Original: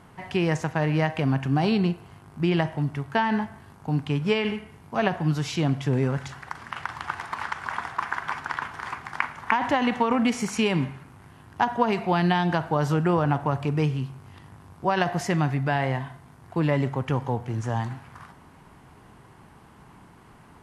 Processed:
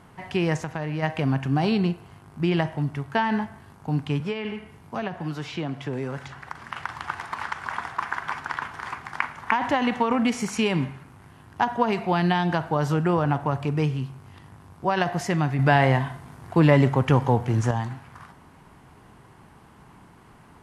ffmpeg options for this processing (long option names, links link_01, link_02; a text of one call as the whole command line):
ffmpeg -i in.wav -filter_complex "[0:a]asplit=3[link_01][link_02][link_03];[link_01]afade=type=out:start_time=0.61:duration=0.02[link_04];[link_02]acompressor=threshold=-27dB:ratio=2.5:attack=3.2:release=140:knee=1:detection=peak,afade=type=in:start_time=0.61:duration=0.02,afade=type=out:start_time=1.02:duration=0.02[link_05];[link_03]afade=type=in:start_time=1.02:duration=0.02[link_06];[link_04][link_05][link_06]amix=inputs=3:normalize=0,asettb=1/sr,asplit=3[link_07][link_08][link_09];[link_07]atrim=end=4.204[link_10];[link_08]atrim=start=4.2:end=6.64,asetpts=PTS-STARTPTS,afade=type=in:duration=0.004:curve=qsin,afade=type=out:start_time=2.436:duration=0.004:curve=qsin,acrossover=split=260|3700[link_11][link_12][link_13];[link_11]acompressor=threshold=-35dB:ratio=4[link_14];[link_12]acompressor=threshold=-29dB:ratio=4[link_15];[link_13]acompressor=threshold=-55dB:ratio=4[link_16];[link_14][link_15][link_16]amix=inputs=3:normalize=0[link_17];[link_09]atrim=start=6.636[link_18];[link_10][link_17]acrossfade=duration=0.004:curve1=hsin:curve2=qsin[link_19];[link_19][link_18]acrossfade=duration=0.004:curve1=qsin:curve2=hsin,asplit=3[link_20][link_21][link_22];[link_20]atrim=end=15.592[link_23];[link_21]atrim=start=15.588:end=17.712,asetpts=PTS-STARTPTS,volume=6.5dB[link_24];[link_22]atrim=start=17.708[link_25];[link_23][link_24]acrossfade=duration=0.004:curve1=hsin:curve2=hsin[link_26];[link_26][link_25]acrossfade=duration=0.004:curve1=hsin:curve2=hsin" out.wav